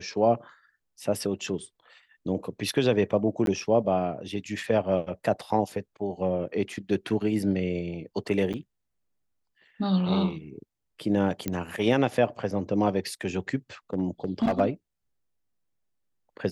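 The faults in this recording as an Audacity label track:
3.460000	3.470000	dropout 12 ms
8.530000	8.540000	dropout 7.8 ms
11.480000	11.480000	pop -14 dBFS
13.930000	14.610000	clipped -19.5 dBFS

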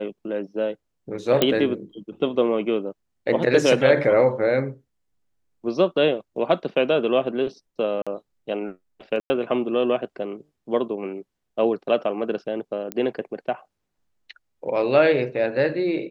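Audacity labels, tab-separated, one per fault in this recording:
1.420000	1.420000	pop -4 dBFS
8.020000	8.070000	dropout 46 ms
9.200000	9.300000	dropout 100 ms
12.920000	12.920000	pop -12 dBFS

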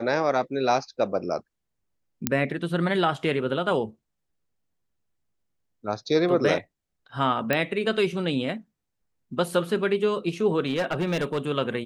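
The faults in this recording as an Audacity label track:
2.270000	2.270000	pop -5 dBFS
7.530000	7.530000	pop -9 dBFS
10.660000	11.380000	clipped -21 dBFS

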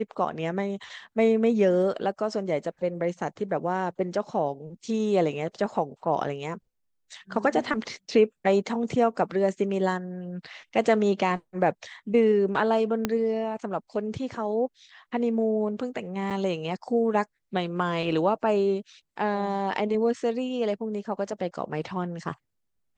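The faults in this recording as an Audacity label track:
13.050000	13.050000	pop -10 dBFS
16.300000	16.310000	dropout 6.3 ms

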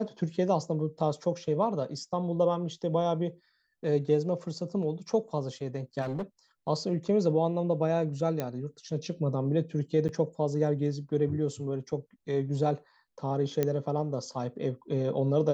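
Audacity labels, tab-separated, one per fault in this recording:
6.010000	6.230000	clipped -29 dBFS
8.400000	8.400000	pop -17 dBFS
10.080000	10.090000	dropout 9 ms
13.630000	13.630000	pop -14 dBFS

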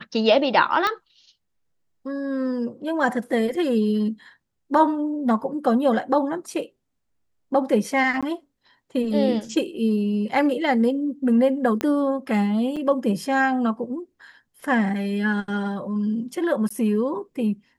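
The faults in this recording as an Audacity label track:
0.870000	0.870000	pop -10 dBFS
3.550000	3.550000	dropout 2.7 ms
8.210000	8.230000	dropout 16 ms
11.810000	11.810000	pop -11 dBFS
12.760000	12.770000	dropout 6 ms
16.690000	16.700000	dropout 15 ms

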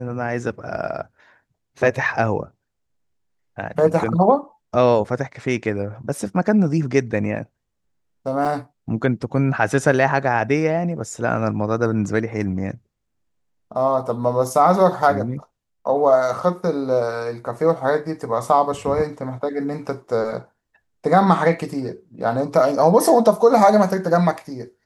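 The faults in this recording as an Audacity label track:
8.450000	8.460000	dropout 5.1 ms

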